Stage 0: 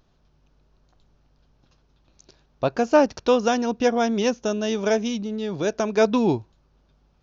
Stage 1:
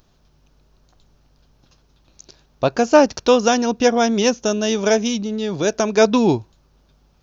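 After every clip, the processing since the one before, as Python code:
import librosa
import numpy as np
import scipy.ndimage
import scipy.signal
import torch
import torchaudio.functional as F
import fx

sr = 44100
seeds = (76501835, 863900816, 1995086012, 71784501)

y = fx.high_shelf(x, sr, hz=6200.0, db=12.0)
y = F.gain(torch.from_numpy(y), 4.5).numpy()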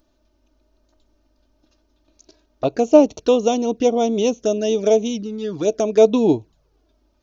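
y = fx.env_flanger(x, sr, rest_ms=3.4, full_db=-15.5)
y = fx.small_body(y, sr, hz=(310.0, 440.0, 620.0), ring_ms=40, db=9)
y = F.gain(torch.from_numpy(y), -5.0).numpy()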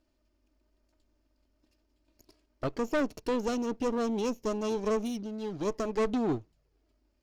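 y = fx.lower_of_two(x, sr, delay_ms=0.41)
y = 10.0 ** (-15.0 / 20.0) * np.tanh(y / 10.0 ** (-15.0 / 20.0))
y = F.gain(torch.from_numpy(y), -9.0).numpy()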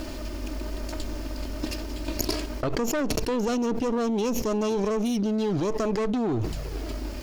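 y = fx.env_flatten(x, sr, amount_pct=100)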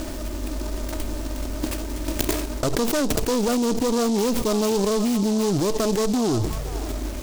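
y = fx.echo_stepped(x, sr, ms=526, hz=960.0, octaves=1.4, feedback_pct=70, wet_db=-8)
y = fx.noise_mod_delay(y, sr, seeds[0], noise_hz=5200.0, depth_ms=0.075)
y = F.gain(torch.from_numpy(y), 4.0).numpy()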